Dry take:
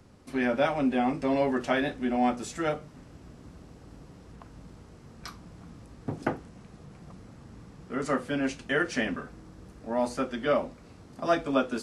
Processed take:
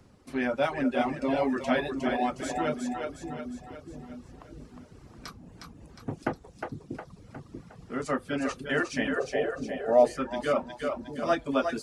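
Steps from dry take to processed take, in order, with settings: split-band echo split 380 Hz, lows 0.638 s, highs 0.36 s, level -4.5 dB; spectral gain 9.18–10.18, 370–810 Hz +11 dB; reverb removal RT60 0.71 s; gain -1 dB

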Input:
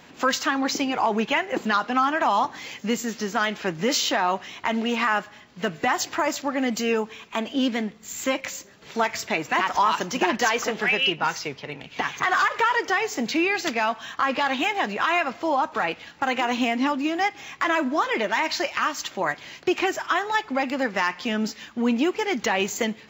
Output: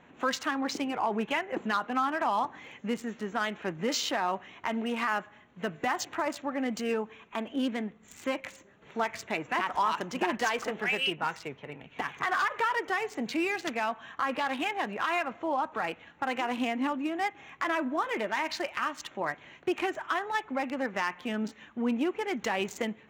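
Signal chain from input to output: Wiener smoothing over 9 samples; 5.08–5.97 high shelf 11000 Hz +6 dB; gain -6.5 dB

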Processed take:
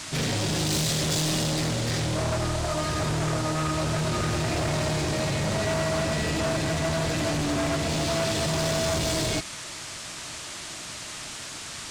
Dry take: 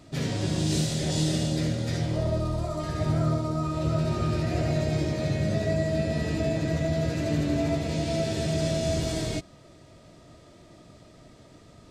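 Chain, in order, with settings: hard clip -29 dBFS, distortion -8 dB; tilt shelf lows -3 dB, about 860 Hz; band noise 800–8600 Hz -45 dBFS; gain +6.5 dB

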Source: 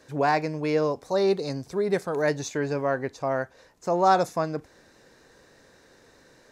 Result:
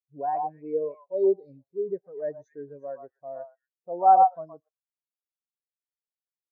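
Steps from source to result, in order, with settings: on a send: delay with a stepping band-pass 0.12 s, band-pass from 950 Hz, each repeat 1.4 oct, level 0 dB; on the sum: spectral expander 2.5:1

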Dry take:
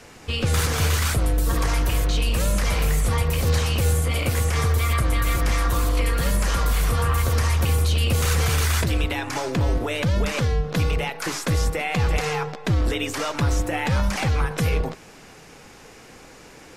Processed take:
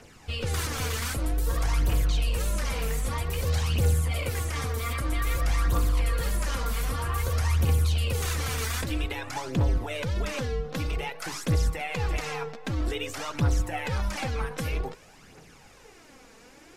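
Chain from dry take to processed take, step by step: phaser 0.52 Hz, delay 4.6 ms, feedback 51%; gain -8 dB

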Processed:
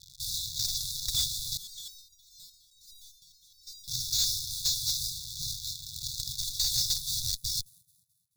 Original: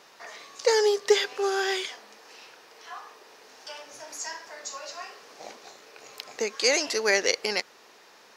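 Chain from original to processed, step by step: ending faded out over 2.26 s; low shelf 310 Hz +5 dB; fuzz box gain 45 dB, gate -48 dBFS; vibrato 0.72 Hz 6.5 cents; band-limited delay 0.216 s, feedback 43%, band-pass 460 Hz, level -11 dB; sample-rate reducer 11000 Hz, jitter 20%; brick-wall FIR band-stop 150–3400 Hz; high shelf 3700 Hz -5 dB; small resonant body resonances 550/910/2300 Hz, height 10 dB, ringing for 20 ms; hard clip -14.5 dBFS, distortion -24 dB; 1.57–3.88 stepped resonator 9.7 Hz 180–960 Hz; gain -5.5 dB

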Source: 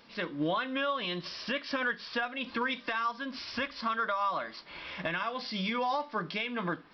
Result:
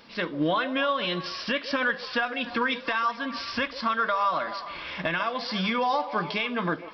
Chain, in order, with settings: delay with a stepping band-pass 0.144 s, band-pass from 540 Hz, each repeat 0.7 oct, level -9 dB; gain +5.5 dB

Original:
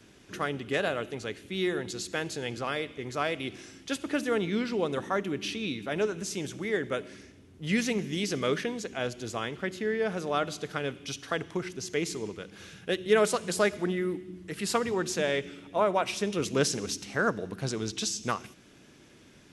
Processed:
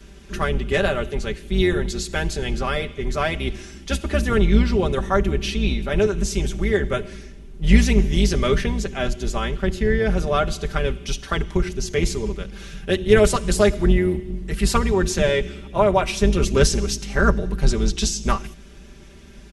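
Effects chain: octaver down 2 oct, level +2 dB; low shelf 92 Hz +9.5 dB; comb 5.1 ms, depth 73%; gain +5 dB

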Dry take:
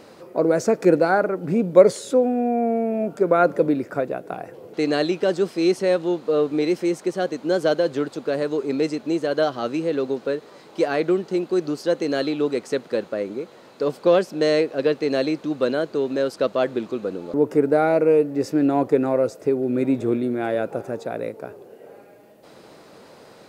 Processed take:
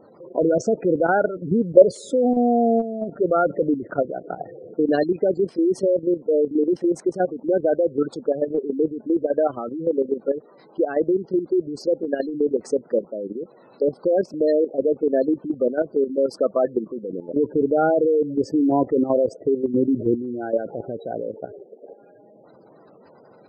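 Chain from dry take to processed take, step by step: spectral gate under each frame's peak -15 dB strong; short-mantissa float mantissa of 8-bit; level quantiser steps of 11 dB; gain +4.5 dB

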